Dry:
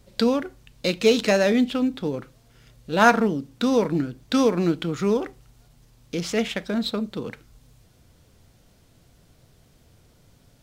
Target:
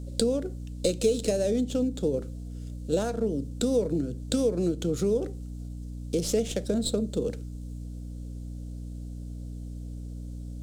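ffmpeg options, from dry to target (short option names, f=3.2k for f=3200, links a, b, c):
-filter_complex "[0:a]acrossover=split=150|1100|2200[a][b][c][d];[d]aeval=exprs='max(val(0),0)':c=same[e];[a][b][c][e]amix=inputs=4:normalize=0,acompressor=threshold=-25dB:ratio=10,equalizer=f=500:t=o:w=1:g=9,equalizer=f=1k:t=o:w=1:g=-12,equalizer=f=2k:t=o:w=1:g=-10,equalizer=f=4k:t=o:w=1:g=3,equalizer=f=8k:t=o:w=1:g=11,aeval=exprs='val(0)+0.0158*(sin(2*PI*60*n/s)+sin(2*PI*2*60*n/s)/2+sin(2*PI*3*60*n/s)/3+sin(2*PI*4*60*n/s)/4+sin(2*PI*5*60*n/s)/5)':c=same"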